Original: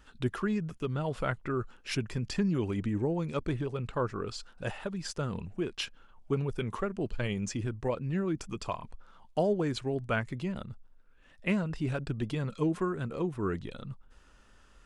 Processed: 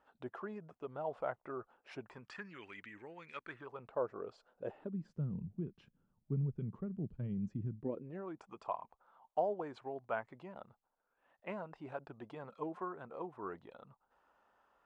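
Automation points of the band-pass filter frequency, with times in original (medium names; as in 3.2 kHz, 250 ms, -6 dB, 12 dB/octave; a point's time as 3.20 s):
band-pass filter, Q 2.4
2.01 s 720 Hz
2.56 s 2 kHz
3.35 s 2 kHz
3.96 s 620 Hz
4.48 s 620 Hz
5.16 s 160 Hz
7.71 s 160 Hz
8.24 s 810 Hz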